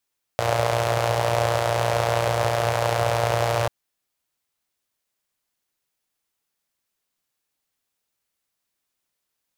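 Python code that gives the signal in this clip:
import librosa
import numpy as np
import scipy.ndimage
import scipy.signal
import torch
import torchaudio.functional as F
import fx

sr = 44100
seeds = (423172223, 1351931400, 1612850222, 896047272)

y = fx.engine_four(sr, seeds[0], length_s=3.29, rpm=3500, resonances_hz=(110.0, 590.0))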